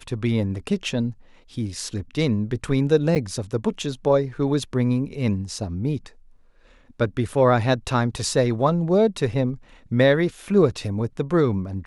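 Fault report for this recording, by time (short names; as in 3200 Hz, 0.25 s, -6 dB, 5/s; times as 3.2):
3.15–3.16 gap 8.9 ms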